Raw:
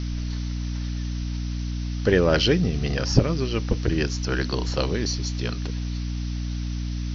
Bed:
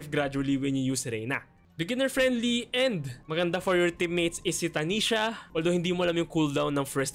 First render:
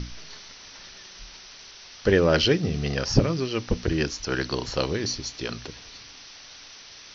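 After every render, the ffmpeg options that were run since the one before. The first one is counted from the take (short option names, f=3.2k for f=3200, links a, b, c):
-af "bandreject=f=60:t=h:w=6,bandreject=f=120:t=h:w=6,bandreject=f=180:t=h:w=6,bandreject=f=240:t=h:w=6,bandreject=f=300:t=h:w=6"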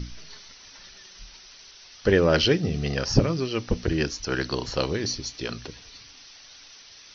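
-af "afftdn=nr=6:nf=-46"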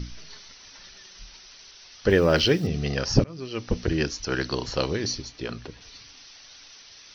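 -filter_complex "[0:a]asettb=1/sr,asplit=3[a][b][c];[a]atrim=end=2.104[d];[b]atrim=start=2.1:end=2.67,asetpts=PTS-STARTPTS,afade=t=in:d=0.004:c=qsin,afade=t=out:st=0.566:d=0.004:c=qsin,acrusher=bits=9:dc=4:mix=0:aa=0.000001[e];[c]atrim=start=2.666[f];[d][e]acrossfade=d=0.004:c1=hsin:c2=qsin[g];[g][f]acrossfade=d=0.004:c1=qsin:c2=hsin,asettb=1/sr,asplit=3[h][i][j];[h]atrim=end=5.224[k];[i]atrim=start=5.22:end=5.81,asetpts=PTS-STARTPTS,afade=t=in:d=0.004:c=qsin,afade=t=out:st=0.586:d=0.004:c=qsin,highshelf=f=3.9k:g=-11[l];[j]atrim=start=5.806[m];[k][l]acrossfade=d=0.004:c1=hsin:c2=qsin[n];[n][m]acrossfade=d=0.004:c1=qsin:c2=hsin,asplit=2[o][p];[o]atrim=end=3.24,asetpts=PTS-STARTPTS,afade=t=out:st=3.236:d=0.004:c=hsin:silence=0.0630957[q];[p]atrim=start=3.24,asetpts=PTS-STARTPTS,afade=t=in:d=0.52:silence=0.0630957[r];[q][r]concat=n=2:v=0:a=1"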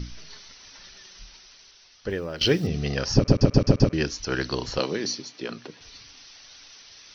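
-filter_complex "[0:a]asettb=1/sr,asplit=3[a][b][c];[a]atrim=end=4.794[d];[b]atrim=start=4.79:end=5.8,asetpts=PTS-STARTPTS,afade=t=in:d=0.004:c=qsin,afade=t=out:st=1.006:d=0.004:c=qsin,highpass=f=160:w=0.5412,highpass=f=160:w=1.3066[e];[c]atrim=start=5.796[f];[d][e]acrossfade=d=0.004:c1=hsin:c2=qsin[g];[g][f]acrossfade=d=0.004:c1=qsin:c2=hsin,asplit=8[h][i][j][k][l][m][n][o];[h]atrim=end=2.41,asetpts=PTS-STARTPTS,afade=t=out:st=1.1:d=1.31:silence=0.133352[p];[i]atrim=start=2.41:end=3.282,asetpts=PTS-STARTPTS,afade=t=in:d=0.004:c=hsin:silence=0.133352[q];[j]atrim=start=3.148:end=3.282[r];[k]atrim=start=3.148:end=3.282[s];[l]atrim=start=3.148:end=3.282[t];[m]atrim=start=3.148:end=3.282[u];[n]atrim=start=3.148:end=3.282[v];[o]atrim=start=3.928[w];[p][q]concat=n=2:v=0:a=1[x];[x][r]acrossfade=d=0.004:c1=hsin:c2=hsin[y];[y][s]acrossfade=d=0.004:c1=hsin:c2=hsin[z];[z][t]acrossfade=d=0.004:c1=hsin:c2=hsin[aa];[aa][u]acrossfade=d=0.004:c1=hsin:c2=hsin[ab];[ab][v]acrossfade=d=0.004:c1=hsin:c2=hsin[ac];[ac][w]acrossfade=d=0.004:c1=hsin:c2=hsin"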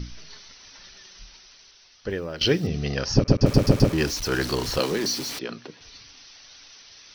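-filter_complex "[0:a]asettb=1/sr,asplit=3[a][b][c];[a]atrim=end=3.464[d];[b]atrim=start=3.46:end=5.39,asetpts=PTS-STARTPTS,afade=t=in:d=0.004:c=qsin,afade=t=out:st=1.926:d=0.004:c=qsin,aeval=exprs='val(0)+0.5*0.0376*sgn(val(0))':c=same[e];[c]atrim=start=5.386[f];[d][e]acrossfade=d=0.004:c1=hsin:c2=qsin[g];[g][f]acrossfade=d=0.004:c1=qsin:c2=hsin"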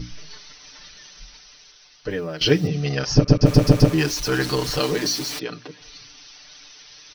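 -af "aecho=1:1:6.7:0.96"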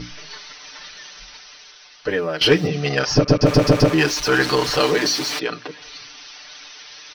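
-filter_complex "[0:a]asplit=2[a][b];[b]highpass=f=720:p=1,volume=16dB,asoftclip=type=tanh:threshold=-1.5dB[c];[a][c]amix=inputs=2:normalize=0,lowpass=f=2.4k:p=1,volume=-6dB"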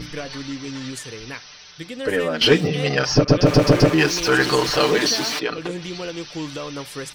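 -filter_complex "[1:a]volume=-4dB[a];[0:a][a]amix=inputs=2:normalize=0"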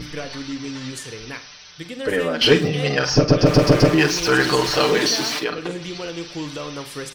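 -filter_complex "[0:a]asplit=2[a][b];[b]adelay=47,volume=-11dB[c];[a][c]amix=inputs=2:normalize=0,asplit=2[d][e];[e]adelay=105,volume=-18dB,highshelf=f=4k:g=-2.36[f];[d][f]amix=inputs=2:normalize=0"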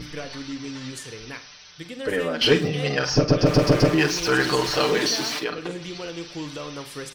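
-af "volume=-3.5dB"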